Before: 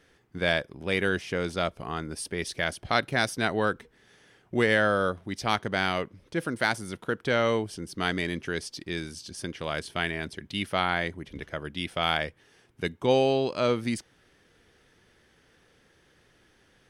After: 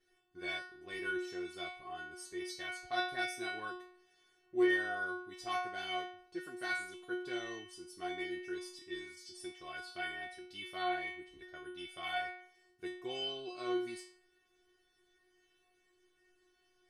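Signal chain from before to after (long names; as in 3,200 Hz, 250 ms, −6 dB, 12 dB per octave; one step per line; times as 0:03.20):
0:07.91–0:08.42: high-shelf EQ 4,600 Hz −5.5 dB
stiff-string resonator 360 Hz, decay 0.6 s, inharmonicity 0.002
level +7.5 dB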